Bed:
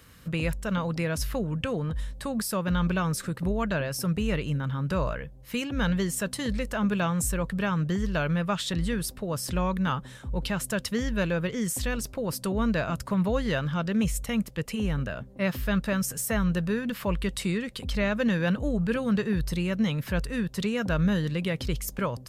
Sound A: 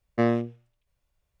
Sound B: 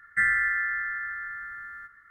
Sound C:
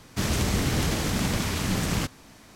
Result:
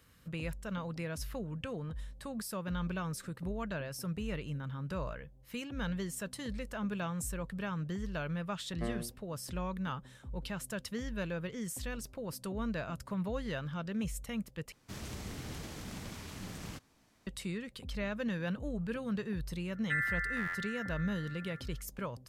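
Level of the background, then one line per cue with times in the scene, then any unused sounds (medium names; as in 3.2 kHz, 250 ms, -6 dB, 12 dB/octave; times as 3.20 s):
bed -10.5 dB
8.63 s: add A -16 dB
14.72 s: replace with C -18 dB
19.73 s: add B -10 dB + buffer glitch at 0.63 s, times 15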